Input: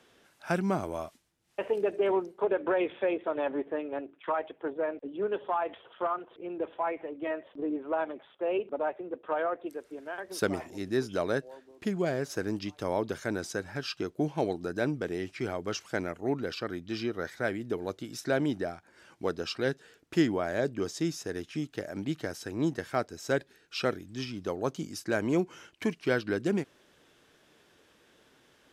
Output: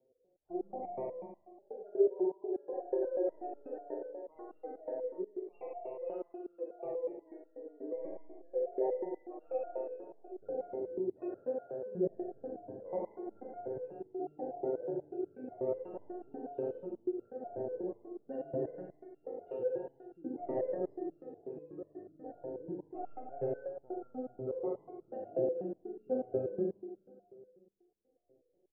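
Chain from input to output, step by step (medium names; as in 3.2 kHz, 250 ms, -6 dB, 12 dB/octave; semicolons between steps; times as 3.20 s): median filter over 41 samples; level-controlled noise filter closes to 670 Hz, open at -25.5 dBFS; spectral gate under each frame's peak -20 dB strong; low-pass that closes with the level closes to 1.9 kHz, closed at -28 dBFS; high-order bell 540 Hz +11 dB; band-stop 1 kHz, Q 9.9; echo from a far wall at 23 m, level -10 dB; spring tank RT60 1.9 s, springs 40/59 ms, chirp 35 ms, DRR -3 dB; resonator arpeggio 8.2 Hz 130–1400 Hz; trim -3.5 dB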